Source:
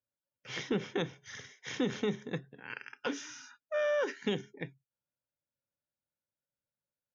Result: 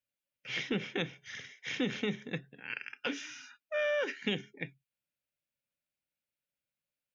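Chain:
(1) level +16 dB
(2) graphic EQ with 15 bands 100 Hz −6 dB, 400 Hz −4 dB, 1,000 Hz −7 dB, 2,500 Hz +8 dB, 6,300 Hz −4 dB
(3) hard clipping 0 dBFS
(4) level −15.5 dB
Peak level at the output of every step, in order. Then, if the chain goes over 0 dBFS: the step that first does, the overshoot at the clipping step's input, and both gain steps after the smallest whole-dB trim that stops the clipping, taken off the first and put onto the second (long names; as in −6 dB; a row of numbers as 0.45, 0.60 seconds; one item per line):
−4.5, −4.0, −4.0, −19.5 dBFS
no step passes full scale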